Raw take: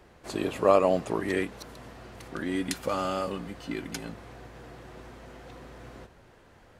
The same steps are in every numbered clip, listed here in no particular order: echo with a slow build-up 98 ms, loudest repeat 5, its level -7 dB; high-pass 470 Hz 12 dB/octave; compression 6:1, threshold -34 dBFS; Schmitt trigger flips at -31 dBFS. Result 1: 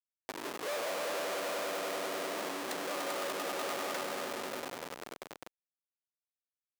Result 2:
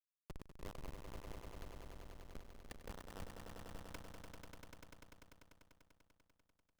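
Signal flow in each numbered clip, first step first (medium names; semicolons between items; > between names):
echo with a slow build-up > Schmitt trigger > compression > high-pass; compression > high-pass > Schmitt trigger > echo with a slow build-up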